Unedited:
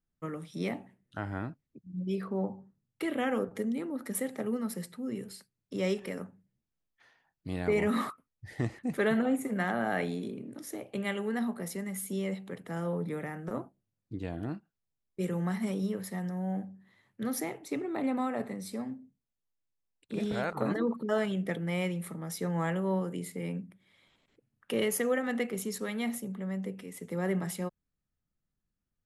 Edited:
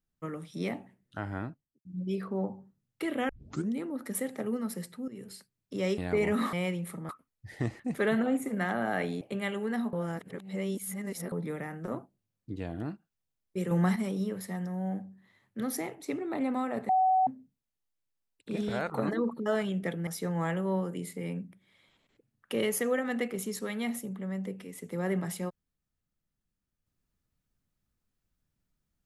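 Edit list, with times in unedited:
1.40–1.85 s: studio fade out
3.29 s: tape start 0.41 s
5.08–5.33 s: fade in, from -14.5 dB
5.98–7.53 s: delete
10.20–10.84 s: delete
11.56–12.95 s: reverse
15.34–15.59 s: gain +6 dB
18.52–18.90 s: bleep 752 Hz -21 dBFS
21.70–22.26 s: move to 8.08 s

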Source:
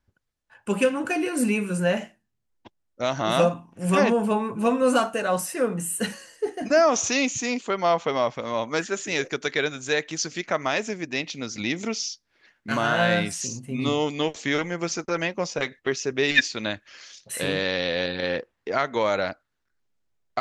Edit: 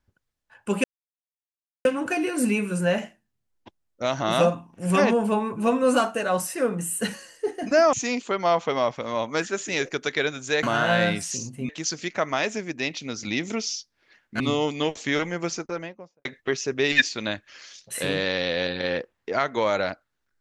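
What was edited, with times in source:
0.84 s: insert silence 1.01 s
6.92–7.32 s: delete
12.73–13.79 s: move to 10.02 s
14.77–15.64 s: studio fade out

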